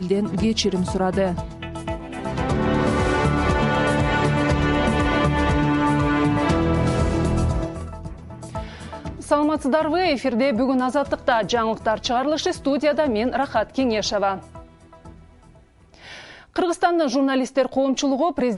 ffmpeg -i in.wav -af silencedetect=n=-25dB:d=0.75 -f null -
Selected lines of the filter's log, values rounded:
silence_start: 14.38
silence_end: 16.56 | silence_duration: 2.18